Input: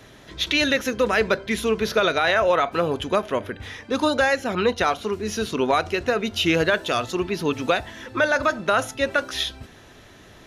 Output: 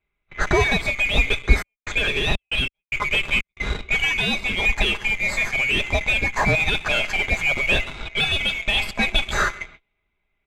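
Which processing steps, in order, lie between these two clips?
neighbouring bands swapped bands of 2,000 Hz
comb filter 4.9 ms, depth 37%
in parallel at −5 dB: fuzz pedal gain 29 dB, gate −36 dBFS
on the sum: parametric band 190 Hz −2.5 dB 1.7 octaves
on a send: repeating echo 133 ms, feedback 24%, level −21.5 dB
on the sum: speech leveller within 4 dB 0.5 s
0:01.46–0:03.60: gate pattern "xxx..xx...xxx" 185 BPM −60 dB
noise gate −37 dBFS, range −26 dB
low-pass that shuts in the quiet parts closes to 2,700 Hz, open at −15 dBFS
RIAA equalisation playback
level −3 dB

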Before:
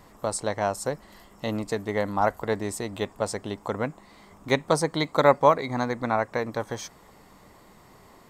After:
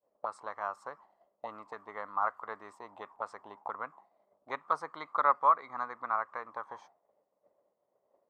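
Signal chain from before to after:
envelope filter 540–1,200 Hz, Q 6.1, up, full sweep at −25 dBFS
downward expander −54 dBFS
level +3 dB

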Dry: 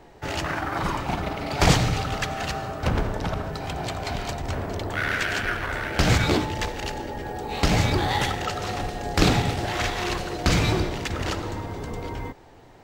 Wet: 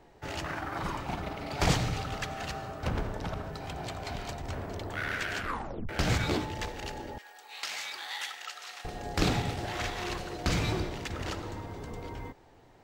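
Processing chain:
0:05.39: tape stop 0.50 s
0:07.18–0:08.85: high-pass filter 1,500 Hz 12 dB per octave
level −8 dB

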